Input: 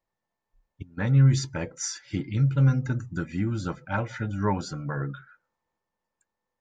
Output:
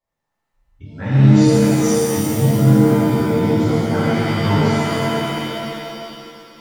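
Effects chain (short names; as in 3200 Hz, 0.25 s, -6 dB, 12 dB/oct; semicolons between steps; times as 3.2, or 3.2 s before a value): shimmer reverb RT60 2.5 s, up +7 st, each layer -2 dB, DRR -10.5 dB; gain -5 dB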